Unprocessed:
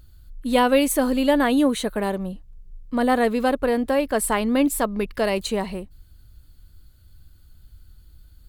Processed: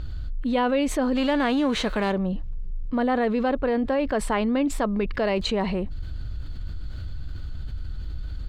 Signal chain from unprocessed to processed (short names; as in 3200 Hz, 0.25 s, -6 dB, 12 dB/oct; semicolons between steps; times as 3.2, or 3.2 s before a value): 1.15–2.11 spectral whitening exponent 0.6; air absorption 170 m; fast leveller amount 70%; gain -6 dB